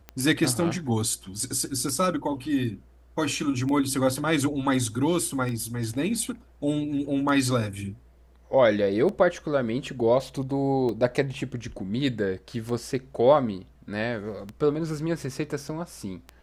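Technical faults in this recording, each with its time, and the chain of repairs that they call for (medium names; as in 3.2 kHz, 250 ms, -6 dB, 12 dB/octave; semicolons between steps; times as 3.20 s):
tick 33 1/3 rpm -21 dBFS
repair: de-click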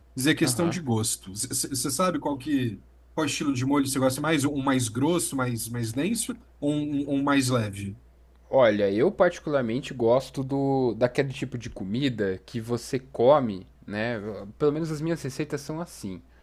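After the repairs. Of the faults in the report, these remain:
nothing left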